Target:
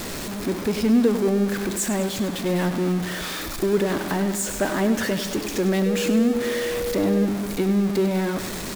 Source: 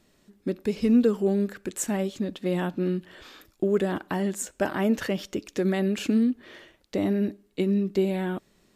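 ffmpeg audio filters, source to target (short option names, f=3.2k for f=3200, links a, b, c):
-filter_complex "[0:a]aeval=exprs='val(0)+0.5*0.0531*sgn(val(0))':c=same,equalizer=f=2.9k:t=o:w=0.26:g=-3,asplit=2[a][b];[b]aecho=0:1:100|200|300|400|500|600|700:0.299|0.17|0.097|0.0553|0.0315|0.018|0.0102[c];[a][c]amix=inputs=2:normalize=0,asettb=1/sr,asplit=3[d][e][f];[d]atrim=end=5.864[g];[e]atrim=start=5.86:end=7.25,asetpts=PTS-STARTPTS,afade=t=in:d=0.004:c=qsin,afade=t=out:st=1.386:d=0.004:c=qsin,aeval=exprs='val(0)+0.0631*sin(2*PI*480*n/s)':c=same[h];[f]atrim=start=7.246[i];[g][h]acrossfade=d=0.004:c1=hsin:c2=qsin[j];[j][i]acrossfade=d=0.004:c1=qsin:c2=hsin"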